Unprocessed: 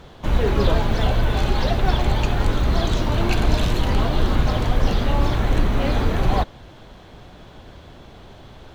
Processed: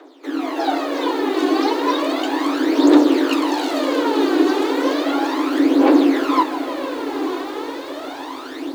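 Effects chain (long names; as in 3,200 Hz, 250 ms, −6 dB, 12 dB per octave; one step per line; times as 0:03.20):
automatic gain control gain up to 16 dB
flanger 1 Hz, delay 9.9 ms, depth 5.9 ms, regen −60%
frequency shifter +260 Hz
feedback delay with all-pass diffusion 979 ms, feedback 43%, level −6.5 dB
phase shifter 0.34 Hz, delay 2.8 ms, feedback 63%
feedback echo at a low word length 154 ms, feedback 80%, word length 6 bits, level −14 dB
level −2.5 dB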